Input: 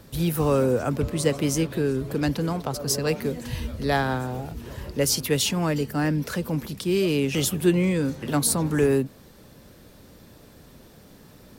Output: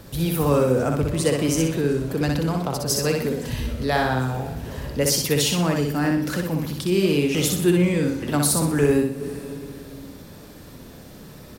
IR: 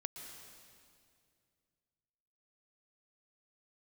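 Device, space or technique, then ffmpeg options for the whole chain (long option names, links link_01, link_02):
ducked reverb: -filter_complex "[0:a]aecho=1:1:62|124|186|248|310:0.668|0.267|0.107|0.0428|0.0171,asplit=3[link_01][link_02][link_03];[1:a]atrim=start_sample=2205[link_04];[link_02][link_04]afir=irnorm=-1:irlink=0[link_05];[link_03]apad=whole_len=531014[link_06];[link_05][link_06]sidechaincompress=threshold=-44dB:ratio=3:attack=16:release=135,volume=1.5dB[link_07];[link_01][link_07]amix=inputs=2:normalize=0"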